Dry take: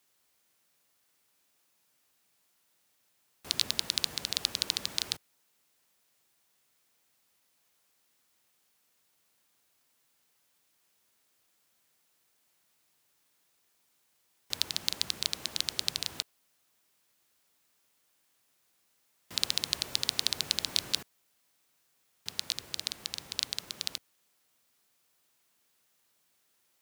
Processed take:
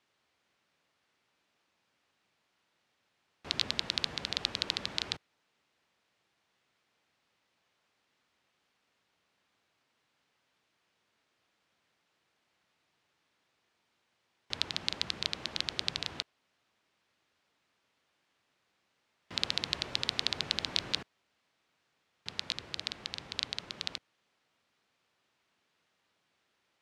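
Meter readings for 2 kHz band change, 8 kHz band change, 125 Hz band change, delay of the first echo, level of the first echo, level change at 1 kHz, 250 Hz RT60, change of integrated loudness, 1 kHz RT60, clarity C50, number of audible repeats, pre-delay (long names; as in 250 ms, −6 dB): +2.0 dB, −10.0 dB, +2.5 dB, no echo audible, no echo audible, +2.5 dB, no reverb audible, −2.5 dB, no reverb audible, no reverb audible, no echo audible, no reverb audible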